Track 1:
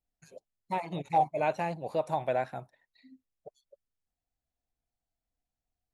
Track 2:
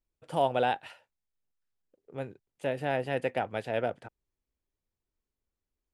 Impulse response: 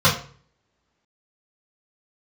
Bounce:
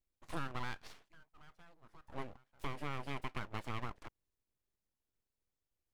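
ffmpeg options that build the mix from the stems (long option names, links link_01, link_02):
-filter_complex "[0:a]acompressor=threshold=-38dB:ratio=3,volume=-18.5dB[link_01];[1:a]acompressor=threshold=-33dB:ratio=6,volume=-2dB,asplit=2[link_02][link_03];[link_03]apad=whole_len=261908[link_04];[link_01][link_04]sidechaincompress=threshold=-45dB:ratio=8:attack=16:release=853[link_05];[link_05][link_02]amix=inputs=2:normalize=0,aeval=exprs='abs(val(0))':channel_layout=same"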